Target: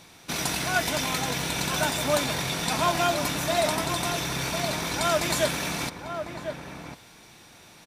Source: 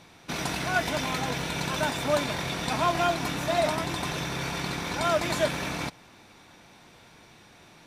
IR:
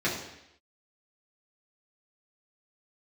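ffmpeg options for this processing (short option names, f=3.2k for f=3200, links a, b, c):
-filter_complex "[0:a]highshelf=f=5k:g=11,asplit=2[a][b];[b]adelay=1050,volume=-7dB,highshelf=f=4k:g=-23.6[c];[a][c]amix=inputs=2:normalize=0"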